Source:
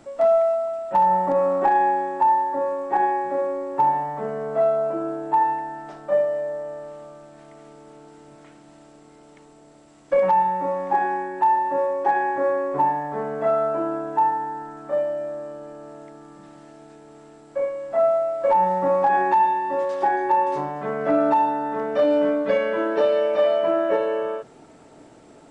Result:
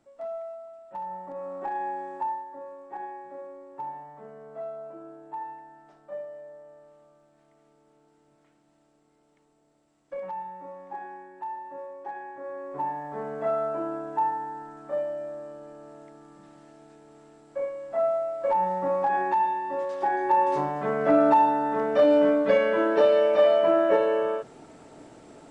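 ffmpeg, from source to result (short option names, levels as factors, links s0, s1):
-af "volume=2.24,afade=t=in:st=1.31:d=0.84:silence=0.398107,afade=t=out:st=2.15:d=0.3:silence=0.446684,afade=t=in:st=12.43:d=0.85:silence=0.281838,afade=t=in:st=20:d=0.61:silence=0.501187"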